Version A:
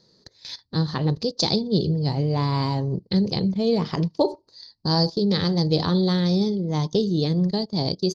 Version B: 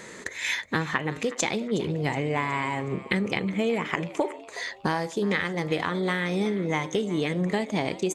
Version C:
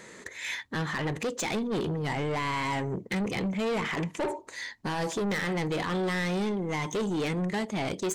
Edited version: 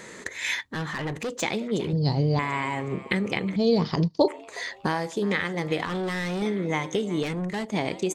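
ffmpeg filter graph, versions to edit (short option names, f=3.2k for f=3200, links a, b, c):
-filter_complex "[2:a]asplit=3[a][b][c];[0:a]asplit=2[d][e];[1:a]asplit=6[f][g][h][i][j][k];[f]atrim=end=0.612[l];[a]atrim=start=0.608:end=1.422[m];[g]atrim=start=1.418:end=1.932[n];[d]atrim=start=1.928:end=2.392[o];[h]atrim=start=2.388:end=3.562[p];[e]atrim=start=3.558:end=4.282[q];[i]atrim=start=4.278:end=5.852[r];[b]atrim=start=5.848:end=6.422[s];[j]atrim=start=6.418:end=7.232[t];[c]atrim=start=7.228:end=7.722[u];[k]atrim=start=7.718[v];[l][m]acrossfade=d=0.004:c1=hsin:c2=hsin[w];[w][n]acrossfade=d=0.004:c1=hsin:c2=hsin[x];[x][o]acrossfade=d=0.004:c1=hsin:c2=hsin[y];[y][p]acrossfade=d=0.004:c1=hsin:c2=hsin[z];[z][q]acrossfade=d=0.004:c1=hsin:c2=hsin[aa];[aa][r]acrossfade=d=0.004:c1=hsin:c2=hsin[ab];[ab][s]acrossfade=d=0.004:c1=hsin:c2=hsin[ac];[ac][t]acrossfade=d=0.004:c1=hsin:c2=hsin[ad];[ad][u]acrossfade=d=0.004:c1=hsin:c2=hsin[ae];[ae][v]acrossfade=d=0.004:c1=hsin:c2=hsin"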